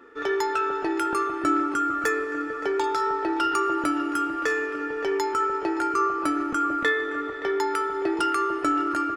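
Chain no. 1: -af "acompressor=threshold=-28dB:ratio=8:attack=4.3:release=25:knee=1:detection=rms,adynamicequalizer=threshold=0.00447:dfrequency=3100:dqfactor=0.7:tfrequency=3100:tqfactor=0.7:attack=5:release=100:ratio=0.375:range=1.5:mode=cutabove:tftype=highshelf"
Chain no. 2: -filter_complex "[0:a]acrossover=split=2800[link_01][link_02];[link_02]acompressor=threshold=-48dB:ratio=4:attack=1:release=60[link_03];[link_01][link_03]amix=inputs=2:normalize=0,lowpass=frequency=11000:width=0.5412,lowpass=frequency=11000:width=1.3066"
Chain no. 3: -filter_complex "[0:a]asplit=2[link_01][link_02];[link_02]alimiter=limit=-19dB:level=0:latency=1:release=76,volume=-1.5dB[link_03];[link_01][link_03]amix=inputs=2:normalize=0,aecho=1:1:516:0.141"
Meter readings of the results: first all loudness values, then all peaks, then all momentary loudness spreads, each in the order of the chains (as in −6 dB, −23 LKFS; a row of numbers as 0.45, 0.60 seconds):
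−30.5, −25.5, −21.0 LKFS; −18.0, −12.0, −8.5 dBFS; 1, 4, 3 LU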